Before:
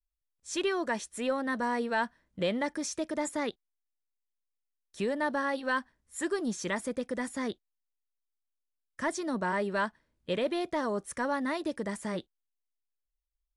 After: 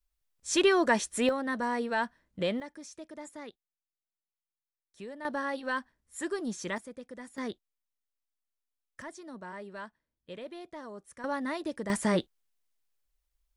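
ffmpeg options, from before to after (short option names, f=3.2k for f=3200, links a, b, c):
-af "asetnsamples=n=441:p=0,asendcmd='1.29 volume volume -0.5dB;2.6 volume volume -12dB;5.25 volume volume -2.5dB;6.78 volume volume -11dB;7.38 volume volume -2.5dB;9.02 volume volume -12.5dB;11.24 volume volume -2dB;11.9 volume volume 8dB',volume=6.5dB"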